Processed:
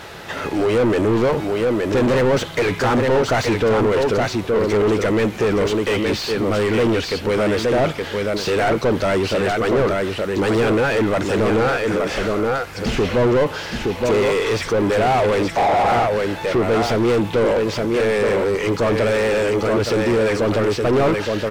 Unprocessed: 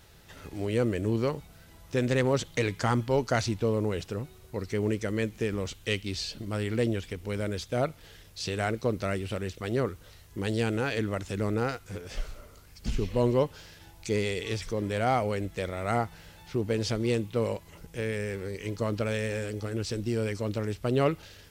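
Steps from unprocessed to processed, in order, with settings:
single-tap delay 869 ms −8 dB
healed spectral selection 0:15.60–0:15.95, 480–1,100 Hz after
mid-hump overdrive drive 33 dB, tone 1,200 Hz, clips at −11.5 dBFS
level +3 dB

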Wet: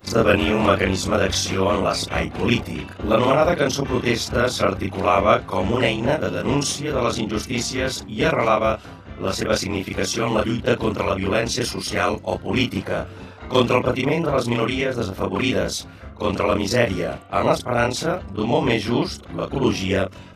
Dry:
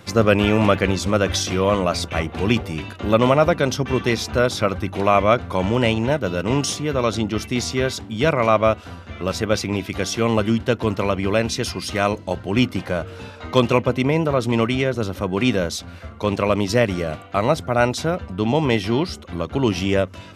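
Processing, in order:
every overlapping window played backwards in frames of 84 ms
harmonic and percussive parts rebalanced harmonic −7 dB
one half of a high-frequency compander decoder only
level +6 dB

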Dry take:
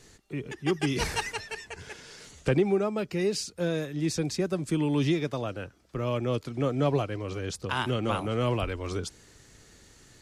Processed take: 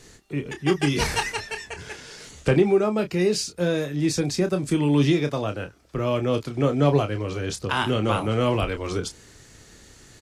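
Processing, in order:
double-tracking delay 28 ms −8.5 dB
level +5 dB

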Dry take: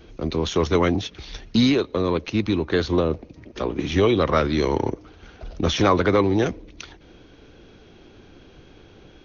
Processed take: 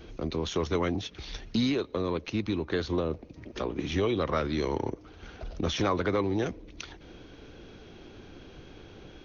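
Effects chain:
downward compressor 1.5 to 1, threshold −40 dBFS, peak gain reduction 10 dB

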